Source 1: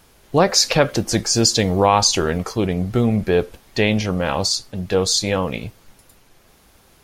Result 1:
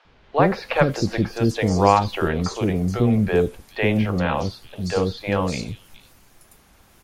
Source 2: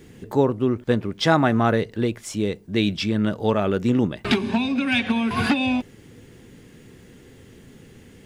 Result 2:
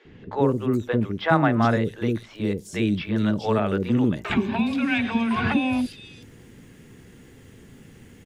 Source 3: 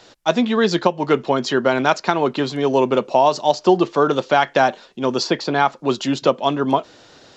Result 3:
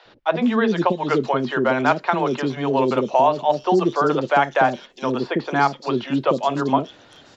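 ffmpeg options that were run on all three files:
-filter_complex "[0:a]acrossover=split=2900[s0][s1];[s1]acompressor=threshold=0.0126:ratio=4:attack=1:release=60[s2];[s0][s2]amix=inputs=2:normalize=0,acrossover=split=460|4100[s3][s4][s5];[s3]adelay=50[s6];[s5]adelay=420[s7];[s6][s4][s7]amix=inputs=3:normalize=0"

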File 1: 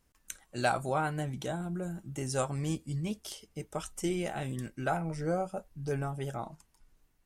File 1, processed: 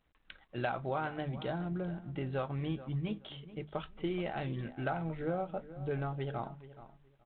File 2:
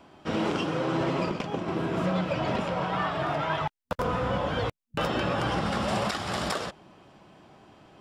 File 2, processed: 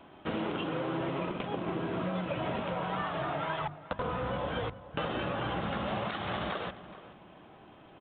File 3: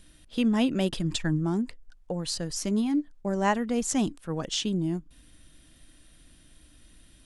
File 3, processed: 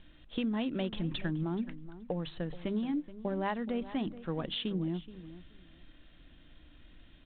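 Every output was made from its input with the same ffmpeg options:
-filter_complex "[0:a]bandreject=f=50:t=h:w=6,bandreject=f=100:t=h:w=6,bandreject=f=150:t=h:w=6,bandreject=f=200:t=h:w=6,bandreject=f=250:t=h:w=6,acompressor=threshold=0.0282:ratio=4,asplit=2[s0][s1];[s1]adelay=426,lowpass=f=2500:p=1,volume=0.178,asplit=2[s2][s3];[s3]adelay=426,lowpass=f=2500:p=1,volume=0.21[s4];[s0][s2][s4]amix=inputs=3:normalize=0" -ar 8000 -c:a adpcm_g726 -b:a 32k

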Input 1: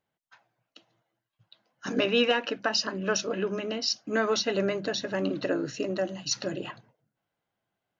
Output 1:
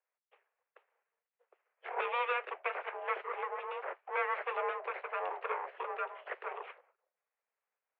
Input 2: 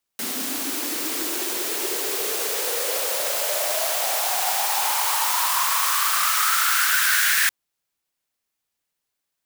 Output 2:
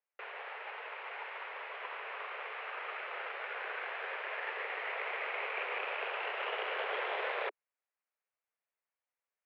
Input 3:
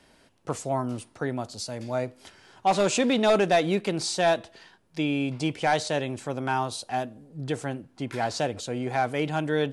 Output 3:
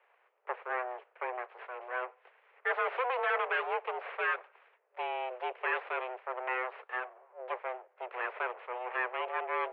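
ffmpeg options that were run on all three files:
-af "aeval=exprs='abs(val(0))':c=same,highpass=f=170:t=q:w=0.5412,highpass=f=170:t=q:w=1.307,lowpass=f=2300:t=q:w=0.5176,lowpass=f=2300:t=q:w=0.7071,lowpass=f=2300:t=q:w=1.932,afreqshift=250,volume=0.708"

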